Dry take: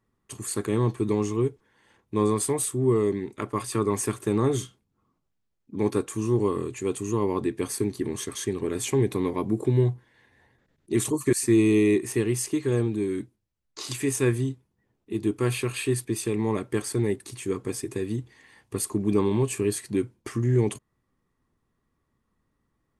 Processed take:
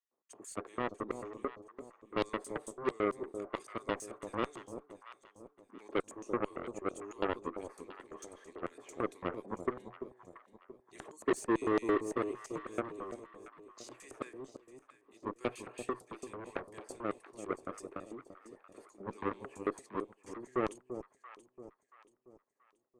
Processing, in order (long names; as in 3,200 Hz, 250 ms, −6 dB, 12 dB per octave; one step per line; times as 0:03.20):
high-shelf EQ 4,000 Hz +11 dB
auto-filter band-pass square 4.5 Hz 600–6,600 Hz
three-way crossover with the lows and the highs turned down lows −15 dB, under 200 Hz, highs −20 dB, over 2,300 Hz
harmonic generator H 7 −11 dB, 8 −34 dB, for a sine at −20.5 dBFS
on a send: delay that swaps between a low-pass and a high-pass 340 ms, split 860 Hz, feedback 60%, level −9 dB